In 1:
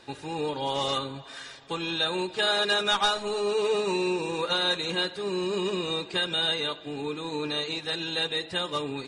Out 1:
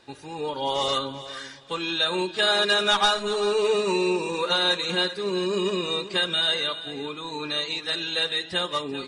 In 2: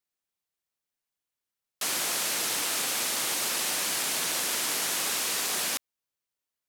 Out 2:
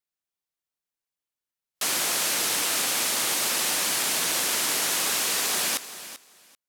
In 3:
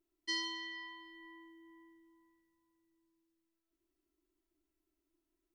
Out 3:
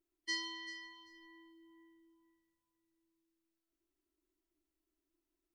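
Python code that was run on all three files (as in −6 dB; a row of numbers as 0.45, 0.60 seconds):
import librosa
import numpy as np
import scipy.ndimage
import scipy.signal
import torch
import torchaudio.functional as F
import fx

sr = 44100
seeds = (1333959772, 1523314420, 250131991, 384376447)

y = fx.noise_reduce_blind(x, sr, reduce_db=7)
y = fx.echo_feedback(y, sr, ms=389, feedback_pct=17, wet_db=-14.0)
y = y * librosa.db_to_amplitude(3.5)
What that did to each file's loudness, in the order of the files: +3.5, +3.5, −1.5 LU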